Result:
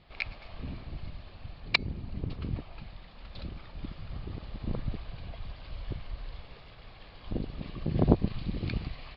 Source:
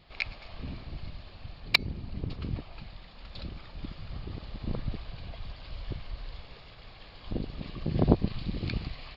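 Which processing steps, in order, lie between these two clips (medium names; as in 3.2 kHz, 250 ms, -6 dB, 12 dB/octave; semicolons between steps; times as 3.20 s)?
distance through air 130 m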